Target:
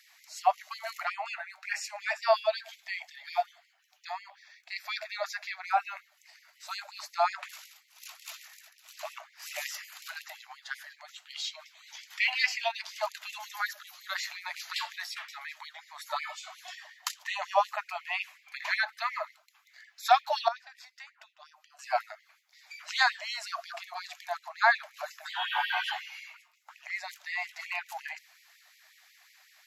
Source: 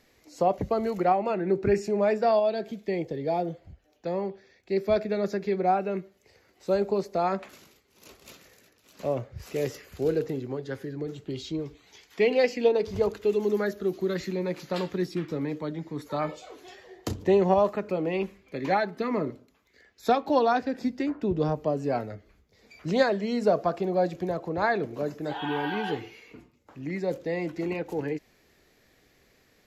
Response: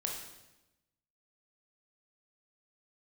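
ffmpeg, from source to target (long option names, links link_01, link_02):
-filter_complex "[0:a]asettb=1/sr,asplit=3[link_01][link_02][link_03];[link_01]atrim=end=20.484[link_04];[link_02]atrim=start=20.48:end=21.79,asetpts=PTS-STARTPTS,afade=type=in:duration=0.004:curve=qsin,afade=type=out:start_time=1.306:duration=0.004:curve=qsin,acompressor=threshold=-38dB:ratio=6[link_05];[link_03]atrim=start=21.786[link_06];[link_04][link_05]acrossfade=duration=0.004:curve1=hsin:curve2=qsin[link_07];[link_07][link_06]acrossfade=duration=0.004:curve1=qsin:curve2=hsin,equalizer=frequency=240:width_type=o:width=2:gain=-10.5,afftfilt=real='re*gte(b*sr/1024,590*pow(1900/590,0.5+0.5*sin(2*PI*5.5*pts/sr)))':imag='im*gte(b*sr/1024,590*pow(1900/590,0.5+0.5*sin(2*PI*5.5*pts/sr)))':win_size=1024:overlap=0.75,volume=6.5dB"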